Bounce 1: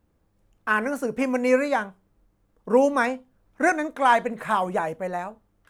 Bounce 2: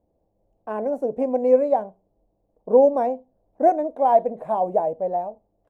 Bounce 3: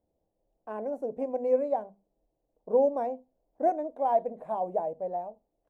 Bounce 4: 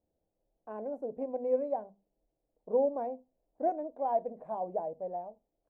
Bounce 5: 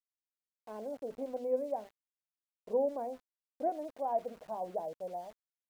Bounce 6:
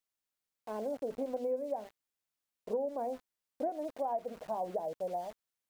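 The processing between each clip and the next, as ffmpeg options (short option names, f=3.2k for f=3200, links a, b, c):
-af "firequalizer=gain_entry='entry(130,0);entry(670,14);entry(1300,-16)':delay=0.05:min_phase=1,volume=-5.5dB"
-af "bandreject=f=50:t=h:w=6,bandreject=f=100:t=h:w=6,bandreject=f=150:t=h:w=6,bandreject=f=200:t=h:w=6,bandreject=f=250:t=h:w=6,volume=-8.5dB"
-af "highshelf=f=2k:g=-11.5,volume=-3.5dB"
-af "aeval=exprs='val(0)*gte(abs(val(0)),0.00282)':c=same,volume=-3dB"
-af "acompressor=threshold=-37dB:ratio=6,volume=5.5dB"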